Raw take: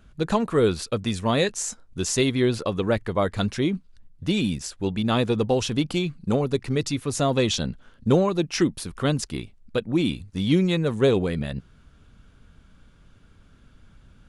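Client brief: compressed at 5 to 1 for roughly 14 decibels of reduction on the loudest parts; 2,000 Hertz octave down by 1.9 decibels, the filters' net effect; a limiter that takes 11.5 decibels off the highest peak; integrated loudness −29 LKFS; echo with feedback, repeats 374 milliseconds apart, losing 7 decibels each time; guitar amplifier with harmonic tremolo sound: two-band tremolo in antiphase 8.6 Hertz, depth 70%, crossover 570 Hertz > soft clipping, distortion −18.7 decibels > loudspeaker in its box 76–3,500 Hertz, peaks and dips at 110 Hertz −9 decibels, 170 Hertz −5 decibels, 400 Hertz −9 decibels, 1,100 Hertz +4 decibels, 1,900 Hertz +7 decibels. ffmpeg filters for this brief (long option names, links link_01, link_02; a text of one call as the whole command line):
ffmpeg -i in.wav -filter_complex "[0:a]equalizer=frequency=2000:width_type=o:gain=-6.5,acompressor=threshold=-31dB:ratio=5,alimiter=level_in=5.5dB:limit=-24dB:level=0:latency=1,volume=-5.5dB,aecho=1:1:374|748|1122|1496|1870:0.447|0.201|0.0905|0.0407|0.0183,acrossover=split=570[link_01][link_02];[link_01]aeval=exprs='val(0)*(1-0.7/2+0.7/2*cos(2*PI*8.6*n/s))':channel_layout=same[link_03];[link_02]aeval=exprs='val(0)*(1-0.7/2-0.7/2*cos(2*PI*8.6*n/s))':channel_layout=same[link_04];[link_03][link_04]amix=inputs=2:normalize=0,asoftclip=threshold=-32.5dB,highpass=76,equalizer=frequency=110:width_type=q:width=4:gain=-9,equalizer=frequency=170:width_type=q:width=4:gain=-5,equalizer=frequency=400:width_type=q:width=4:gain=-9,equalizer=frequency=1100:width_type=q:width=4:gain=4,equalizer=frequency=1900:width_type=q:width=4:gain=7,lowpass=frequency=3500:width=0.5412,lowpass=frequency=3500:width=1.3066,volume=17.5dB" out.wav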